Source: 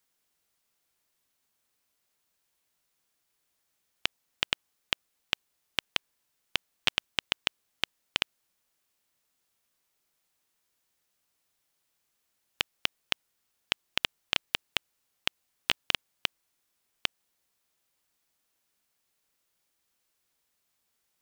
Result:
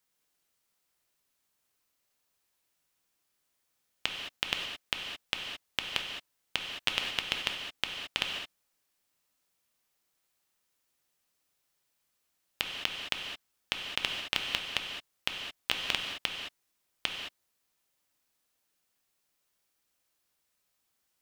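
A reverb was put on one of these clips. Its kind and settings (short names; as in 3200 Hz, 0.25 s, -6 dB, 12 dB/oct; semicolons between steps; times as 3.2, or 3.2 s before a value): non-linear reverb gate 0.24 s flat, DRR 1.5 dB; gain -3 dB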